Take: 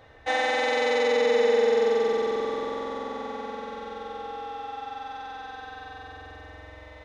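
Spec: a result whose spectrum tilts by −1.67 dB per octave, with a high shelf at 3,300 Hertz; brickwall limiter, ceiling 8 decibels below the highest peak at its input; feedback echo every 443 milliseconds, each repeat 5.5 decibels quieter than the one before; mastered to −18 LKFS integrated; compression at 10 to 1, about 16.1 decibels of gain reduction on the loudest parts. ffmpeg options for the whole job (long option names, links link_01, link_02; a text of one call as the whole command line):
ffmpeg -i in.wav -af "highshelf=frequency=3300:gain=6.5,acompressor=threshold=-35dB:ratio=10,alimiter=level_in=7dB:limit=-24dB:level=0:latency=1,volume=-7dB,aecho=1:1:443|886|1329|1772|2215|2658|3101:0.531|0.281|0.149|0.079|0.0419|0.0222|0.0118,volume=20.5dB" out.wav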